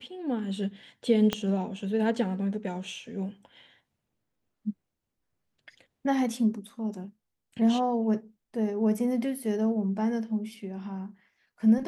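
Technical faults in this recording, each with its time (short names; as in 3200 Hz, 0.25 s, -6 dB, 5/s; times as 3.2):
1.33 pop -12 dBFS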